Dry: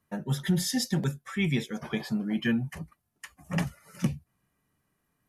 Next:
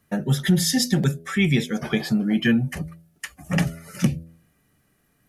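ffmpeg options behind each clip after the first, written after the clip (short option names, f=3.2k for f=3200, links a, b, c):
-filter_complex "[0:a]equalizer=f=1k:t=o:w=0.34:g=-10,bandreject=f=82.41:t=h:w=4,bandreject=f=164.82:t=h:w=4,bandreject=f=247.23:t=h:w=4,bandreject=f=329.64:t=h:w=4,bandreject=f=412.05:t=h:w=4,bandreject=f=494.46:t=h:w=4,bandreject=f=576.87:t=h:w=4,bandreject=f=659.28:t=h:w=4,asplit=2[a][b];[b]acompressor=threshold=-34dB:ratio=6,volume=-1dB[c];[a][c]amix=inputs=2:normalize=0,volume=5.5dB"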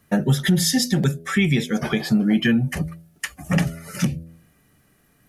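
-af "alimiter=limit=-15dB:level=0:latency=1:release=327,volume=5.5dB"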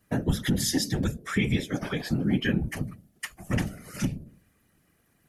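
-af "afftfilt=real='hypot(re,im)*cos(2*PI*random(0))':imag='hypot(re,im)*sin(2*PI*random(1))':win_size=512:overlap=0.75,volume=-1dB"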